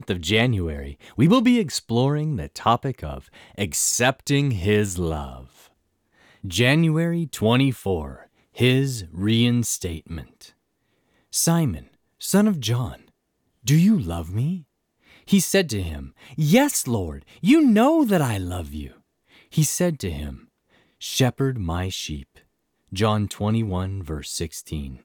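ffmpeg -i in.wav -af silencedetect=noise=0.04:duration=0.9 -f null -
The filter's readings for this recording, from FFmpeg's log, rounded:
silence_start: 5.34
silence_end: 6.44 | silence_duration: 1.10
silence_start: 10.21
silence_end: 11.34 | silence_duration: 1.12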